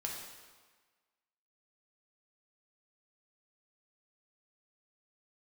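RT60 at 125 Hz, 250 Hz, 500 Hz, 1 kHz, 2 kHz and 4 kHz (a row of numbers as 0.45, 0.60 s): 1.2, 1.3, 1.4, 1.5, 1.4, 1.2 s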